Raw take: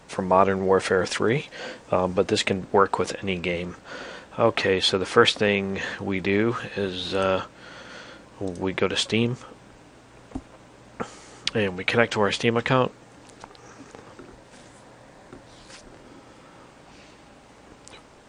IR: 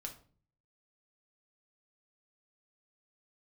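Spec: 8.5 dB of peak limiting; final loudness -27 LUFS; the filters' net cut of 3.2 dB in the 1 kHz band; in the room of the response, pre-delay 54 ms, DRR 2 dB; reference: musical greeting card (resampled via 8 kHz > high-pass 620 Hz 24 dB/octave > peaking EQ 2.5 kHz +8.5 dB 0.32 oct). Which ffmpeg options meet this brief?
-filter_complex "[0:a]equalizer=f=1000:t=o:g=-4,alimiter=limit=0.282:level=0:latency=1,asplit=2[s0][s1];[1:a]atrim=start_sample=2205,adelay=54[s2];[s1][s2]afir=irnorm=-1:irlink=0,volume=1.12[s3];[s0][s3]amix=inputs=2:normalize=0,aresample=8000,aresample=44100,highpass=f=620:w=0.5412,highpass=f=620:w=1.3066,equalizer=f=2500:t=o:w=0.32:g=8.5,volume=0.841"

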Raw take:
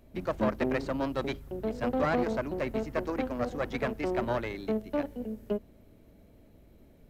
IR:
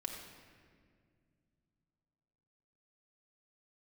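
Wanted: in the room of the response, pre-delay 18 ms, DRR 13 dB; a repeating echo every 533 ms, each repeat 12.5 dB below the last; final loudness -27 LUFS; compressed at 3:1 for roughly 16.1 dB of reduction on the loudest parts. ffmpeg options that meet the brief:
-filter_complex "[0:a]acompressor=threshold=0.00501:ratio=3,aecho=1:1:533|1066|1599:0.237|0.0569|0.0137,asplit=2[s0][s1];[1:a]atrim=start_sample=2205,adelay=18[s2];[s1][s2]afir=irnorm=-1:irlink=0,volume=0.237[s3];[s0][s3]amix=inputs=2:normalize=0,volume=8.41"

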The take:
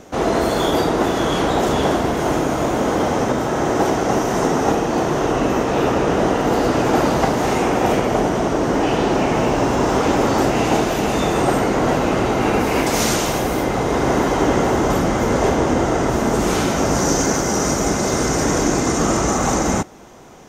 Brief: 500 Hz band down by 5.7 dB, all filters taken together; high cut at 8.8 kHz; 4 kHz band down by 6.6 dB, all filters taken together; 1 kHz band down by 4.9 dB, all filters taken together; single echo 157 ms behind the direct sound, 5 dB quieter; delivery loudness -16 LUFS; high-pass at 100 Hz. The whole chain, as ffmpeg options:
-af "highpass=100,lowpass=8800,equalizer=f=500:t=o:g=-6.5,equalizer=f=1000:t=o:g=-3.5,equalizer=f=4000:t=o:g=-9,aecho=1:1:157:0.562,volume=1.78"

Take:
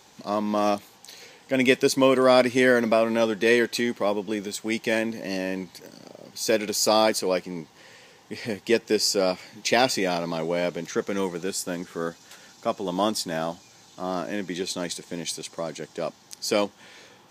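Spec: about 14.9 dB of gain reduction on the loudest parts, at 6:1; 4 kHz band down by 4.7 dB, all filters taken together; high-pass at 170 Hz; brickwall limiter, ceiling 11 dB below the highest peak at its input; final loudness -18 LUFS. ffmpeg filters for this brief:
-af "highpass=170,equalizer=f=4000:t=o:g=-6,acompressor=threshold=0.0282:ratio=6,volume=11.2,alimiter=limit=0.447:level=0:latency=1"

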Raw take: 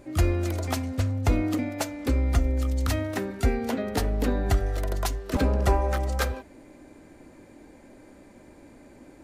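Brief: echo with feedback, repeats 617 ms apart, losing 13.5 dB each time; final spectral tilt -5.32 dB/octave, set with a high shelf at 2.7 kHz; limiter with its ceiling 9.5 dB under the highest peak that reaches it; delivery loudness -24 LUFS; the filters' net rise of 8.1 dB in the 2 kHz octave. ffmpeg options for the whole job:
-af "equalizer=f=2000:t=o:g=8,highshelf=f=2700:g=5,alimiter=limit=0.133:level=0:latency=1,aecho=1:1:617|1234:0.211|0.0444,volume=1.58"

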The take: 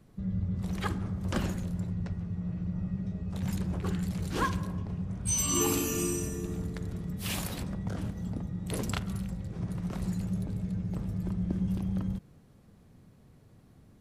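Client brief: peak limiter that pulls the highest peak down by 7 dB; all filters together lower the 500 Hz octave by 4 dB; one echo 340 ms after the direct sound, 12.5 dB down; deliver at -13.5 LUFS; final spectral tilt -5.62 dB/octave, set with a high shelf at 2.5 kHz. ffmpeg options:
-af "equalizer=f=500:t=o:g=-5.5,highshelf=f=2500:g=-5.5,alimiter=level_in=1.12:limit=0.0631:level=0:latency=1,volume=0.891,aecho=1:1:340:0.237,volume=11.9"

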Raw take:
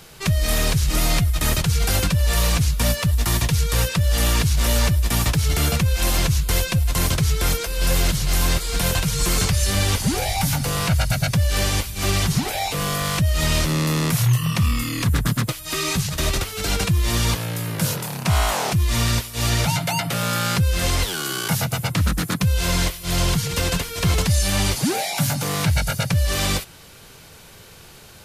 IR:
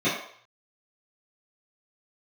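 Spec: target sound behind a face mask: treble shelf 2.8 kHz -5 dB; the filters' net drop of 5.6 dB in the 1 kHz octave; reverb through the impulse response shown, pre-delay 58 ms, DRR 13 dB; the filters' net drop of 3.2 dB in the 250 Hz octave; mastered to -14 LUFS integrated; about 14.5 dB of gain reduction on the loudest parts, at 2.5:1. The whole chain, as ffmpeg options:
-filter_complex "[0:a]equalizer=f=250:t=o:g=-5.5,equalizer=f=1000:t=o:g=-6.5,acompressor=threshold=0.0112:ratio=2.5,asplit=2[s0][s1];[1:a]atrim=start_sample=2205,adelay=58[s2];[s1][s2]afir=irnorm=-1:irlink=0,volume=0.0398[s3];[s0][s3]amix=inputs=2:normalize=0,highshelf=f=2800:g=-5,volume=12.6"

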